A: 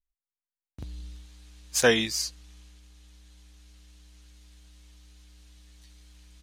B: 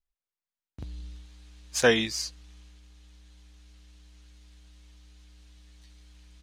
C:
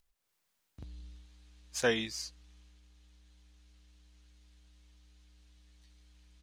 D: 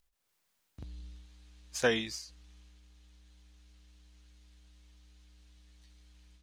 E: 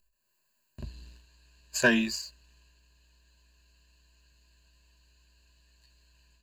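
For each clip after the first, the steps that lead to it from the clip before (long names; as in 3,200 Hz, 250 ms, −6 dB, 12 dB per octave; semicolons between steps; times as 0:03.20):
high-shelf EQ 8,600 Hz −10.5 dB
upward compression, threshold −53 dBFS; level −8 dB
every ending faded ahead of time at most 100 dB per second; level +2 dB
EQ curve with evenly spaced ripples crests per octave 1.4, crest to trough 17 dB; leveller curve on the samples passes 1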